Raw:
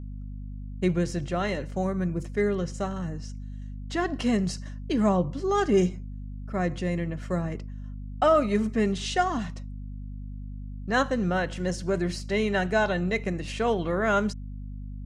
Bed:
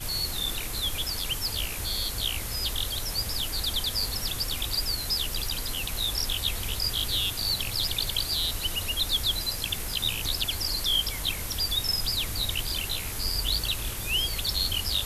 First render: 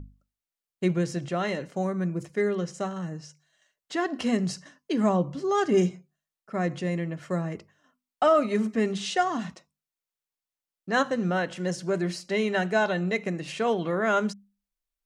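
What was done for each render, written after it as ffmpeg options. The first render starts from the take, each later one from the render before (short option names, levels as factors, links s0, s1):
-af "bandreject=f=50:t=h:w=6,bandreject=f=100:t=h:w=6,bandreject=f=150:t=h:w=6,bandreject=f=200:t=h:w=6,bandreject=f=250:t=h:w=6"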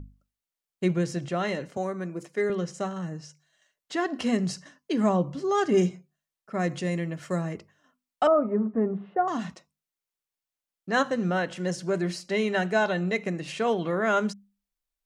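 -filter_complex "[0:a]asettb=1/sr,asplit=3[s0][s1][s2];[s0]atrim=end=1.774[s3];[s1]atrim=start=1.77:end=2.5,asetpts=PTS-STARTPTS,afade=t=in:d=0.004:c=qsin,afade=t=out:st=0.726:d=0.004:c=qsin,highpass=260[s4];[s2]atrim=start=2.496[s5];[s3][s4]acrossfade=d=0.004:c1=hsin:c2=qsin[s6];[s6][s5]acrossfade=d=0.004:c1=qsin:c2=hsin,asettb=1/sr,asplit=3[s7][s8][s9];[s7]atrim=end=6.594[s10];[s8]atrim=start=6.59:end=7.52,asetpts=PTS-STARTPTS,afade=t=in:d=0.004:c=qsin,afade=t=out:st=0.926:d=0.004:c=qsin,highshelf=f=4400:g=7.5[s11];[s9]atrim=start=7.516[s12];[s10][s11]acrossfade=d=0.004:c1=hsin:c2=qsin[s13];[s13][s12]acrossfade=d=0.004:c1=qsin:c2=hsin,asettb=1/sr,asplit=3[s14][s15][s16];[s14]atrim=end=8.274[s17];[s15]atrim=start=8.27:end=9.28,asetpts=PTS-STARTPTS,afade=t=in:d=0.004:c=qsin,afade=t=out:st=1.006:d=0.004:c=qsin,lowpass=f=1200:w=0.5412,lowpass=f=1200:w=1.3066[s18];[s16]atrim=start=9.276[s19];[s17][s18]acrossfade=d=0.004:c1=hsin:c2=qsin[s20];[s20][s19]acrossfade=d=0.004:c1=qsin:c2=hsin"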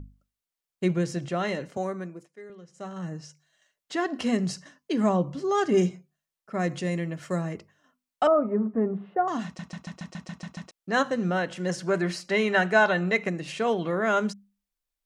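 -filter_complex "[0:a]asettb=1/sr,asplit=3[s0][s1][s2];[s0]atrim=end=11.694[s3];[s1]atrim=start=11.69:end=13.29,asetpts=PTS-STARTPTS,afade=t=in:d=0.004:c=qsin,afade=t=out:st=1.596:d=0.004:c=qsin,equalizer=f=1400:t=o:w=2:g=6.5[s4];[s2]atrim=start=13.286[s5];[s3][s4]acrossfade=d=0.004:c1=hsin:c2=qsin[s6];[s6][s5]acrossfade=d=0.004:c1=qsin:c2=hsin,asplit=12[s7][s8][s9][s10][s11][s12][s13][s14][s15][s16][s17][s18];[s7]atrim=end=2.29,asetpts=PTS-STARTPTS,afade=t=out:st=1.93:d=0.36:silence=0.125893[s19];[s8]atrim=start=2.29:end=2.72,asetpts=PTS-STARTPTS,volume=0.126[s20];[s9]atrim=start=2.72:end=9.592,asetpts=PTS-STARTPTS,afade=t=in:d=0.36:silence=0.125893[s21];[s10]atrim=start=9.448:end=9.592[s22];[s11]atrim=start=9.448:end=9.592[s23];[s12]atrim=start=9.448:end=9.592[s24];[s13]atrim=start=9.448:end=9.592[s25];[s14]atrim=start=9.448:end=9.592[s26];[s15]atrim=start=9.448:end=9.592[s27];[s16]atrim=start=9.448:end=9.592[s28];[s17]atrim=start=9.448:end=9.592[s29];[s18]atrim=start=10.708[s30];[s19][s20][s21]concat=n=3:v=0:a=1[s31];[s31][s22]acrossfade=d=0.004:c1=hsin:c2=hsin[s32];[s32][s23]acrossfade=d=0.004:c1=hsin:c2=hsin[s33];[s33][s24]acrossfade=d=0.004:c1=hsin:c2=hsin[s34];[s34][s25]acrossfade=d=0.004:c1=hsin:c2=hsin[s35];[s35][s26]acrossfade=d=0.004:c1=hsin:c2=hsin[s36];[s36][s27]acrossfade=d=0.004:c1=hsin:c2=hsin[s37];[s37][s28]acrossfade=d=0.004:c1=hsin:c2=hsin[s38];[s38][s29]acrossfade=d=0.004:c1=hsin:c2=hsin[s39];[s39][s30]acrossfade=d=0.004:c1=hsin:c2=hsin"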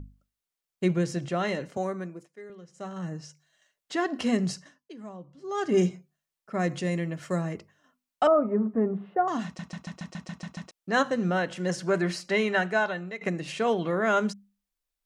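-filter_complex "[0:a]asplit=4[s0][s1][s2][s3];[s0]atrim=end=4.94,asetpts=PTS-STARTPTS,afade=t=out:st=4.49:d=0.45:silence=0.112202[s4];[s1]atrim=start=4.94:end=5.37,asetpts=PTS-STARTPTS,volume=0.112[s5];[s2]atrim=start=5.37:end=13.21,asetpts=PTS-STARTPTS,afade=t=in:d=0.45:silence=0.112202,afade=t=out:st=6.9:d=0.94:silence=0.158489[s6];[s3]atrim=start=13.21,asetpts=PTS-STARTPTS,afade=t=in:d=0.004:c=hsin:silence=0.158489[s7];[s4][s5][s6][s7]concat=n=4:v=0:a=1"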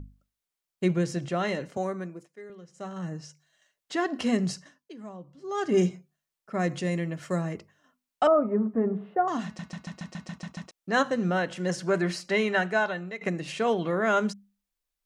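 -filter_complex "[0:a]asplit=3[s0][s1][s2];[s0]afade=t=out:st=8.81:d=0.02[s3];[s1]bandreject=f=213.5:t=h:w=4,bandreject=f=427:t=h:w=4,bandreject=f=640.5:t=h:w=4,bandreject=f=854:t=h:w=4,bandreject=f=1067.5:t=h:w=4,bandreject=f=1281:t=h:w=4,bandreject=f=1494.5:t=h:w=4,bandreject=f=1708:t=h:w=4,bandreject=f=1921.5:t=h:w=4,bandreject=f=2135:t=h:w=4,bandreject=f=2348.5:t=h:w=4,bandreject=f=2562:t=h:w=4,bandreject=f=2775.5:t=h:w=4,bandreject=f=2989:t=h:w=4,bandreject=f=3202.5:t=h:w=4,bandreject=f=3416:t=h:w=4,bandreject=f=3629.5:t=h:w=4,bandreject=f=3843:t=h:w=4,bandreject=f=4056.5:t=h:w=4,bandreject=f=4270:t=h:w=4,bandreject=f=4483.5:t=h:w=4,bandreject=f=4697:t=h:w=4,bandreject=f=4910.5:t=h:w=4,bandreject=f=5124:t=h:w=4,afade=t=in:st=8.81:d=0.02,afade=t=out:st=10.35:d=0.02[s4];[s2]afade=t=in:st=10.35:d=0.02[s5];[s3][s4][s5]amix=inputs=3:normalize=0"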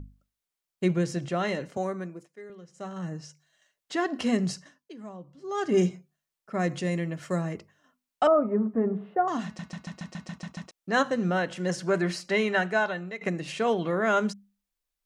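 -af anull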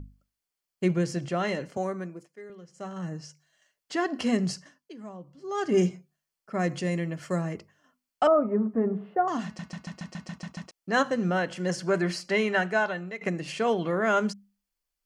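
-af "equalizer=f=4500:t=o:w=0.41:g=3,bandreject=f=3800:w=9.4"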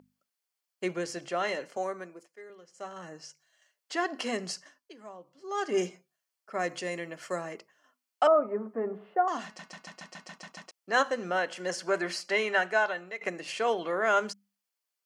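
-af "highpass=450"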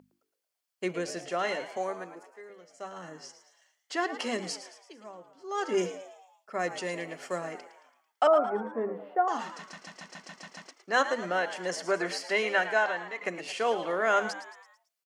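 -filter_complex "[0:a]asplit=6[s0][s1][s2][s3][s4][s5];[s1]adelay=111,afreqshift=95,volume=0.251[s6];[s2]adelay=222,afreqshift=190,volume=0.12[s7];[s3]adelay=333,afreqshift=285,volume=0.0575[s8];[s4]adelay=444,afreqshift=380,volume=0.0279[s9];[s5]adelay=555,afreqshift=475,volume=0.0133[s10];[s0][s6][s7][s8][s9][s10]amix=inputs=6:normalize=0"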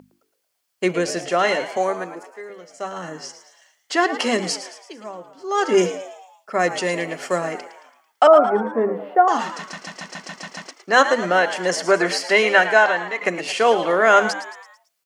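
-af "volume=3.76,alimiter=limit=0.708:level=0:latency=1"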